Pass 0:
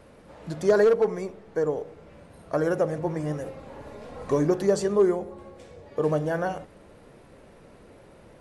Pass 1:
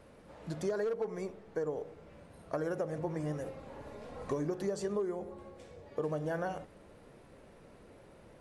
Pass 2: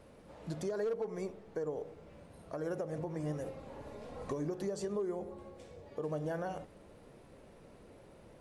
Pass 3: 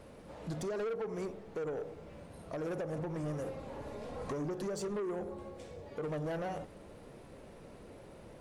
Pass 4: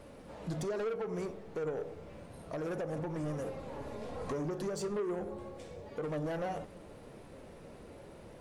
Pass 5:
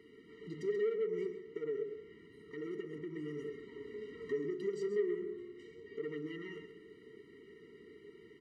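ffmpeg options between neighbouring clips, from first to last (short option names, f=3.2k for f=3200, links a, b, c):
-af "acompressor=threshold=-25dB:ratio=12,volume=-5.5dB"
-af "alimiter=level_in=3.5dB:limit=-24dB:level=0:latency=1:release=169,volume=-3.5dB,equalizer=f=1.6k:w=1.2:g=-3"
-af "asoftclip=type=tanh:threshold=-37.5dB,volume=4.5dB"
-af "flanger=delay=3.4:depth=9.5:regen=78:speed=0.32:shape=sinusoidal,volume=5.5dB"
-filter_complex "[0:a]asplit=3[a][b][c];[a]bandpass=f=530:t=q:w=8,volume=0dB[d];[b]bandpass=f=1.84k:t=q:w=8,volume=-6dB[e];[c]bandpass=f=2.48k:t=q:w=8,volume=-9dB[f];[d][e][f]amix=inputs=3:normalize=0,asplit=2[g][h];[h]aecho=0:1:133:0.282[i];[g][i]amix=inputs=2:normalize=0,afftfilt=real='re*eq(mod(floor(b*sr/1024/460),2),0)':imag='im*eq(mod(floor(b*sr/1024/460),2),0)':win_size=1024:overlap=0.75,volume=14.5dB"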